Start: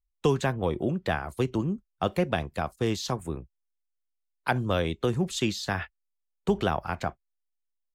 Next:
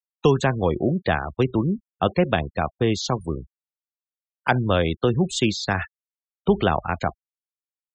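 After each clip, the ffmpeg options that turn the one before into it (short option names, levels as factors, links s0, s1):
-af "afftfilt=real='re*gte(hypot(re,im),0.0141)':imag='im*gte(hypot(re,im),0.0141)':win_size=1024:overlap=0.75,volume=2"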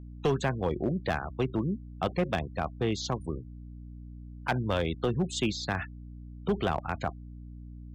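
-af "aeval=exprs='val(0)+0.0178*(sin(2*PI*60*n/s)+sin(2*PI*2*60*n/s)/2+sin(2*PI*3*60*n/s)/3+sin(2*PI*4*60*n/s)/4+sin(2*PI*5*60*n/s)/5)':c=same,volume=4.22,asoftclip=hard,volume=0.237,volume=0.422"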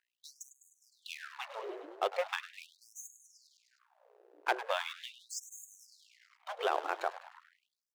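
-filter_complex "[0:a]asplit=8[s0][s1][s2][s3][s4][s5][s6][s7];[s1]adelay=102,afreqshift=81,volume=0.224[s8];[s2]adelay=204,afreqshift=162,volume=0.138[s9];[s3]adelay=306,afreqshift=243,volume=0.0861[s10];[s4]adelay=408,afreqshift=324,volume=0.0531[s11];[s5]adelay=510,afreqshift=405,volume=0.0331[s12];[s6]adelay=612,afreqshift=486,volume=0.0204[s13];[s7]adelay=714,afreqshift=567,volume=0.0127[s14];[s0][s8][s9][s10][s11][s12][s13][s14]amix=inputs=8:normalize=0,aeval=exprs='sgn(val(0))*max(abs(val(0))-0.00596,0)':c=same,afftfilt=real='re*gte(b*sr/1024,300*pow(6400/300,0.5+0.5*sin(2*PI*0.4*pts/sr)))':imag='im*gte(b*sr/1024,300*pow(6400/300,0.5+0.5*sin(2*PI*0.4*pts/sr)))':win_size=1024:overlap=0.75"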